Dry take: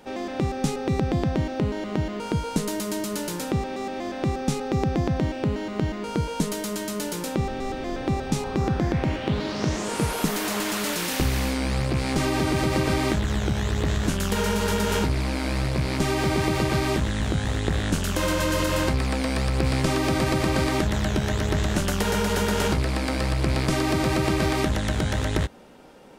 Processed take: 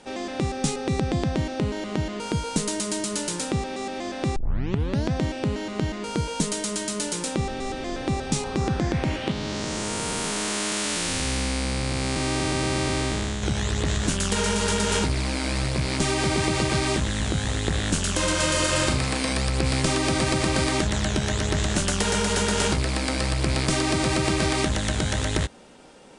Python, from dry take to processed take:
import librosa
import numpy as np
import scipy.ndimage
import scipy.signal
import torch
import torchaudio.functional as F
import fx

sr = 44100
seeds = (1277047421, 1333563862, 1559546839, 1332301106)

y = fx.spec_blur(x, sr, span_ms=390.0, at=(9.31, 13.43))
y = fx.room_flutter(y, sr, wall_m=6.4, rt60_s=0.43, at=(18.31, 19.33))
y = fx.edit(y, sr, fx.tape_start(start_s=4.36, length_s=0.76), tone=tone)
y = scipy.signal.sosfilt(scipy.signal.cheby1(6, 1.0, 9900.0, 'lowpass', fs=sr, output='sos'), y)
y = fx.high_shelf(y, sr, hz=4200.0, db=9.5)